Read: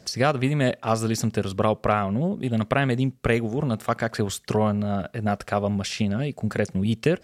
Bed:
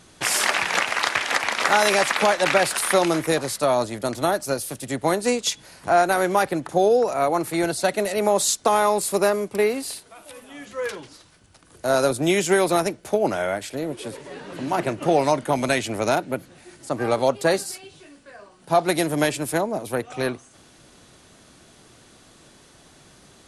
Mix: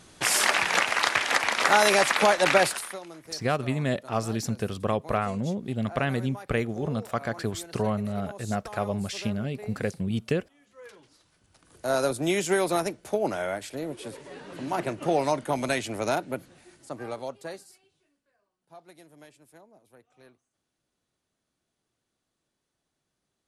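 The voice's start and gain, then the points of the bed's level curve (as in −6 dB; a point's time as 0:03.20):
3.25 s, −5.0 dB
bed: 0:02.66 −1.5 dB
0:03.01 −23 dB
0:10.61 −23 dB
0:11.68 −5.5 dB
0:16.49 −5.5 dB
0:18.41 −30.5 dB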